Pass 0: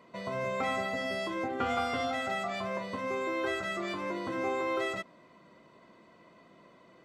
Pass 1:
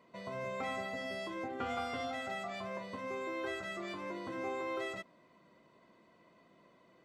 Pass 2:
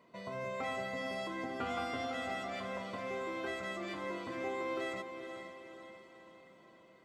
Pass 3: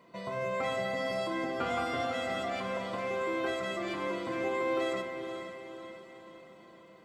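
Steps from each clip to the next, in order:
peaking EQ 1.3 kHz -2.5 dB 0.21 oct; trim -6.5 dB
echo that smears into a reverb 460 ms, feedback 52%, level -8 dB
simulated room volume 1200 m³, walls mixed, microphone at 0.8 m; trim +4.5 dB

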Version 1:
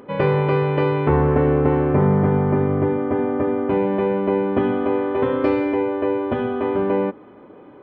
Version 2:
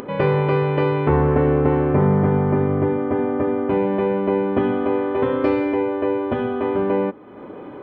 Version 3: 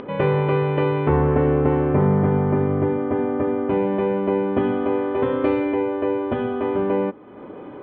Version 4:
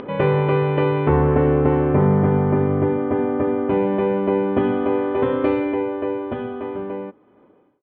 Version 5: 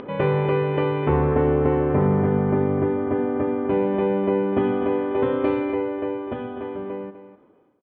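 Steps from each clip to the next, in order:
upward compressor, threshold -26 dBFS
Chebyshev low-pass 3.5 kHz, order 3; trim -1 dB
fade out at the end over 2.55 s; trim +1.5 dB
delay 250 ms -12 dB; trim -3 dB

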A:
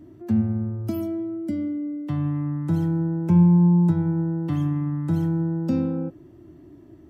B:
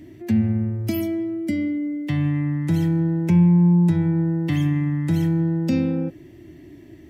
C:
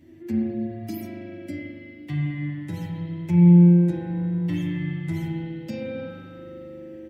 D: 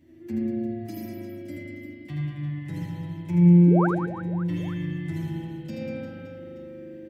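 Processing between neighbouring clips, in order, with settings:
resonant high shelf 1.6 kHz +7 dB, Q 3; in parallel at +1 dB: peak limiter -17 dBFS, peak gain reduction 8.5 dB; on the sum: trim -3 dB
spring tank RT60 3.2 s, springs 40 ms, chirp 70 ms, DRR -3.5 dB; endless flanger 8.7 ms -0.61 Hz; trim -5.5 dB
painted sound rise, 3.67–3.87 s, 260–1700 Hz -22 dBFS; on a send: reverse bouncing-ball echo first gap 80 ms, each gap 1.4×, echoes 5; on the sum: trim -5 dB

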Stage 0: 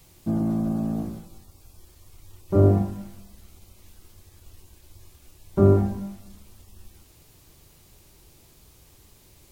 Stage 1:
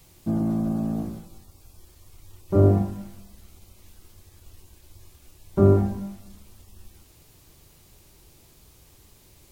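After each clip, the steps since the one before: no audible change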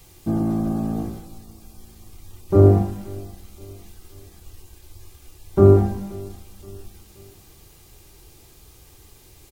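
comb 2.5 ms, depth 31%; feedback delay 525 ms, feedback 46%, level -23 dB; trim +4 dB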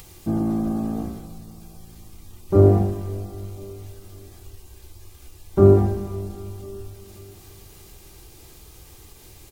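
upward compressor, threshold -38 dBFS; reverberation RT60 3.6 s, pre-delay 7 ms, DRR 12 dB; trim -1 dB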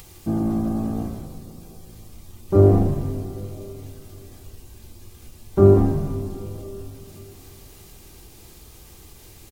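frequency-shifting echo 158 ms, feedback 55%, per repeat -120 Hz, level -11 dB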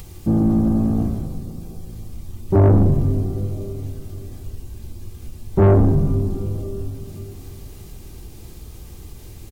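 bass shelf 360 Hz +10.5 dB; saturation -9 dBFS, distortion -7 dB

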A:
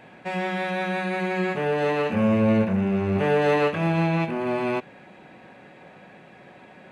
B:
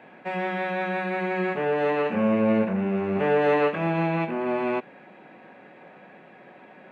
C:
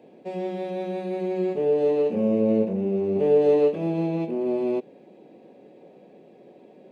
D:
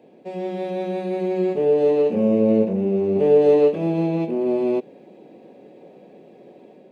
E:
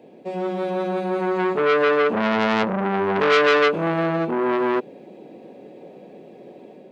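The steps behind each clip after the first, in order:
three-band isolator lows -19 dB, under 160 Hz, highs -14 dB, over 3.1 kHz
FFT filter 180 Hz 0 dB, 440 Hz +7 dB, 1.5 kHz -21 dB, 4.9 kHz +4 dB; trim -2 dB
level rider gain up to 4 dB
transformer saturation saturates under 2.1 kHz; trim +3.5 dB

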